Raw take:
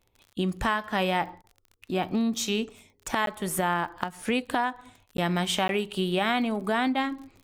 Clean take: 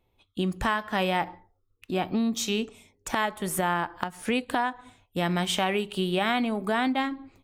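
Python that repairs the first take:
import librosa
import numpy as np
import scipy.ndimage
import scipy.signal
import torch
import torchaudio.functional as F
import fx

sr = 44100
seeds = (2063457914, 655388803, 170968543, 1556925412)

y = fx.fix_declick_ar(x, sr, threshold=6.5)
y = fx.fix_interpolate(y, sr, at_s=(3.26, 5.17, 5.68), length_ms=12.0)
y = fx.fix_interpolate(y, sr, at_s=(1.42,), length_ms=18.0)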